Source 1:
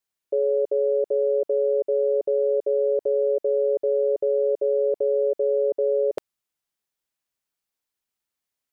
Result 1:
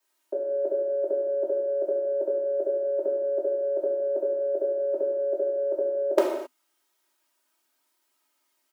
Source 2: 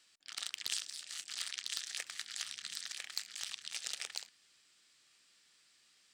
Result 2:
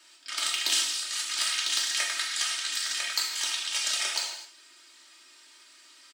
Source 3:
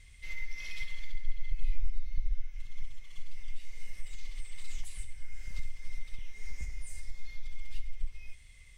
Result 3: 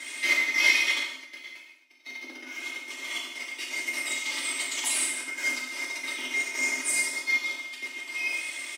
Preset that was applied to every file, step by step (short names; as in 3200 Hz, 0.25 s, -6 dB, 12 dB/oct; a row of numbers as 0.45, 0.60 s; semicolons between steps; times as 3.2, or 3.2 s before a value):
comb 3.2 ms, depth 85%; negative-ratio compressor -26 dBFS, ratio -0.5; rippled Chebyshev high-pass 250 Hz, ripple 6 dB; non-linear reverb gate 0.29 s falling, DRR -2.5 dB; match loudness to -27 LUFS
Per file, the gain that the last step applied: +2.0, +12.0, +18.5 dB